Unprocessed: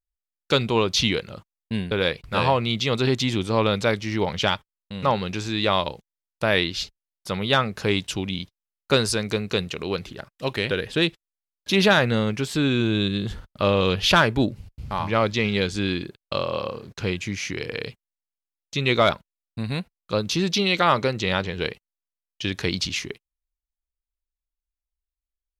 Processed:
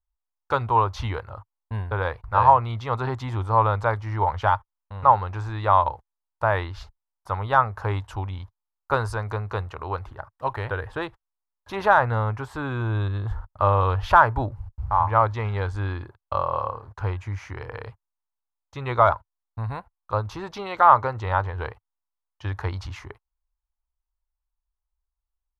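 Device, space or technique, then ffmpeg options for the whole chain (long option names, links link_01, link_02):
phone in a pocket: -af "lowpass=3900,firequalizer=gain_entry='entry(100,0);entry(170,-25);entry(900,6);entry(2400,-15);entry(3600,-15);entry(12000,14)':delay=0.05:min_phase=1,equalizer=frequency=260:width_type=o:width=0.86:gain=4,highshelf=frequency=2100:gain=-10.5,volume=6dB"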